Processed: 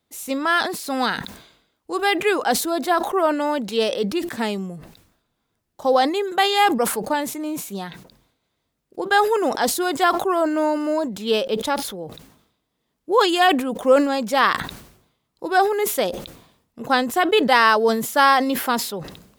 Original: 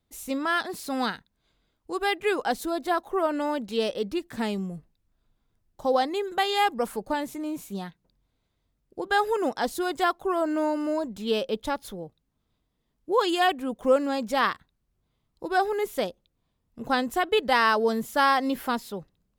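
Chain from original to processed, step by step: HPF 260 Hz 6 dB/oct; sustainer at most 79 dB/s; gain +6.5 dB

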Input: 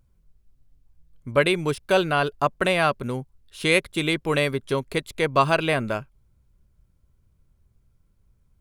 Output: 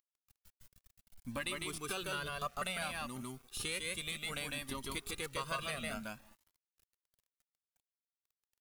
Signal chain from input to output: pre-emphasis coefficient 0.9; echo 0.152 s -3 dB; in parallel at -10.5 dB: Schmitt trigger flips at -33 dBFS; on the sum: compressor 2.5:1, threshold -47 dBFS, peak gain reduction 15 dB; small resonant body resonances 220/1200 Hz, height 10 dB, ringing for 40 ms; on a send at -21.5 dB: bell 5000 Hz -14.5 dB 1.1 oct + reverb RT60 0.95 s, pre-delay 0.105 s; on the sum: bit-crush 11-bit; cascading flanger rising 0.62 Hz; gain +9 dB

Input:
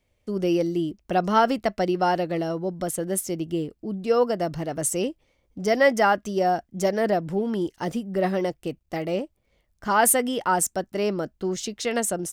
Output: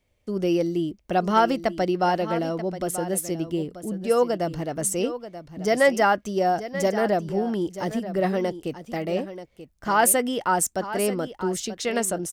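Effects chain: hard clip -8.5 dBFS, distortion -41 dB; echo 0.934 s -12.5 dB

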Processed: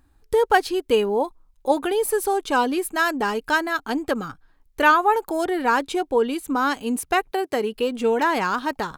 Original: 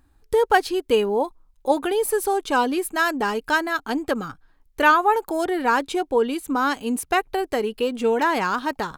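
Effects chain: 7.3–7.74 HPF 180 Hz -> 47 Hz 24 dB/oct

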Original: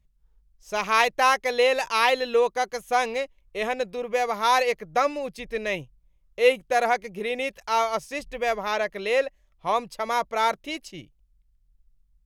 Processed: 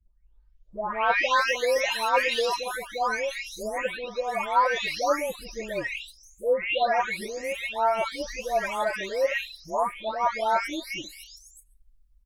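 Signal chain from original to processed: spectral delay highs late, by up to 0.725 s; comb 3.2 ms, depth 47%

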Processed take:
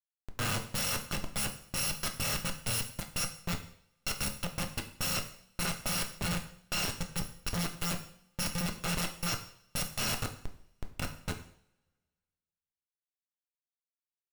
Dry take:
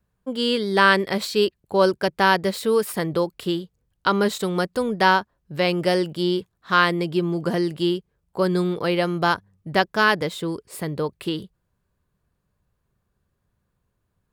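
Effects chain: FFT order left unsorted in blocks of 128 samples; Schmitt trigger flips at -18.5 dBFS; two-slope reverb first 0.56 s, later 1.8 s, from -26 dB, DRR 4.5 dB; gain -9 dB

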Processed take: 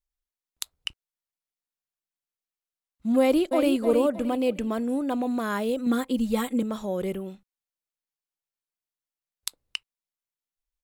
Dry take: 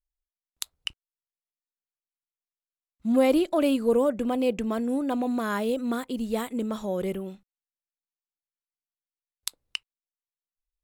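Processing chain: 3.2–3.75 echo throw 0.31 s, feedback 35%, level -7.5 dB; 5.86–6.63 comb 3.7 ms, depth 98%

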